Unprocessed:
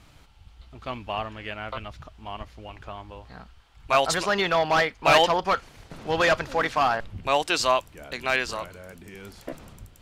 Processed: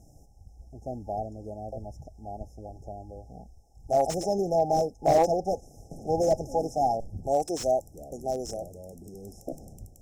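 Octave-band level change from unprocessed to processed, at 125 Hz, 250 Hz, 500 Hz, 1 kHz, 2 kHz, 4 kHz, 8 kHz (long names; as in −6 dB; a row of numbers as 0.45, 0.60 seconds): 0.0, 0.0, 0.0, −4.5, −27.0, −17.0, −4.5 decibels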